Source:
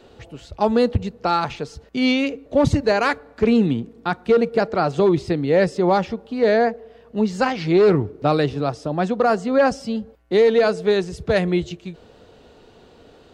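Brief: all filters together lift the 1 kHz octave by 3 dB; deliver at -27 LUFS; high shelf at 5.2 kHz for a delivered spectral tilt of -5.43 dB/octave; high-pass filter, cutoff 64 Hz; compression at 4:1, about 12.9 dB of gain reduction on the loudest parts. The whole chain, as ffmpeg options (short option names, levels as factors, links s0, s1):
-af "highpass=64,equalizer=f=1000:t=o:g=4.5,highshelf=f=5200:g=-4,acompressor=threshold=0.0447:ratio=4,volume=1.41"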